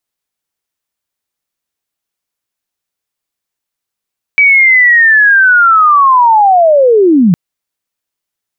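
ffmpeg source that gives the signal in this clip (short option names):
-f lavfi -i "aevalsrc='pow(10,(-3-0.5*t/2.96)/20)*sin(2*PI*(2300*t-2140*t*t/(2*2.96)))':d=2.96:s=44100"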